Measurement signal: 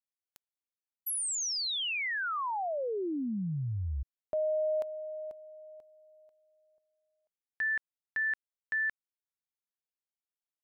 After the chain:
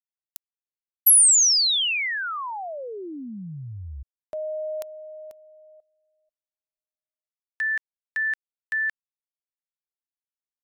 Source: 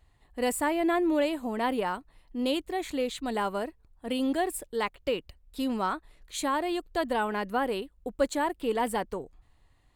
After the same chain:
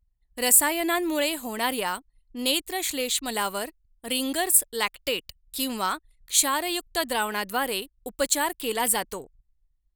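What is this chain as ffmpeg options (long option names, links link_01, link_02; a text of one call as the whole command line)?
ffmpeg -i in.wav -af "crystalizer=i=9:c=0,anlmdn=0.0398,volume=-2.5dB" out.wav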